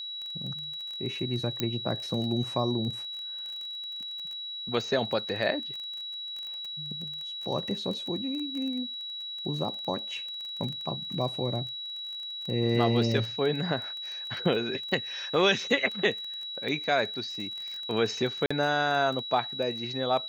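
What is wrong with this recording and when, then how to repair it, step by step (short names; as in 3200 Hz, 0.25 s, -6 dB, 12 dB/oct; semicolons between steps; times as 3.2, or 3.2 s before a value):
crackle 20/s -34 dBFS
tone 3900 Hz -35 dBFS
1.6 pop -12 dBFS
18.46–18.5 gap 45 ms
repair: de-click; notch 3900 Hz, Q 30; interpolate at 18.46, 45 ms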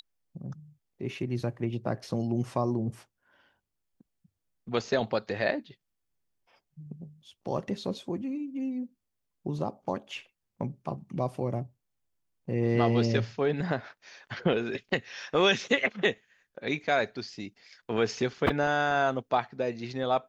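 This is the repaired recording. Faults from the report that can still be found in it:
none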